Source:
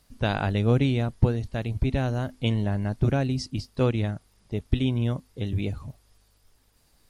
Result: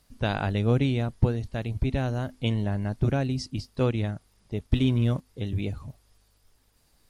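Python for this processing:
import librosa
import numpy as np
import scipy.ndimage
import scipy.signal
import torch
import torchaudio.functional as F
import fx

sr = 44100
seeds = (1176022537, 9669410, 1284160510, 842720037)

y = fx.leveller(x, sr, passes=1, at=(4.66, 5.27))
y = F.gain(torch.from_numpy(y), -1.5).numpy()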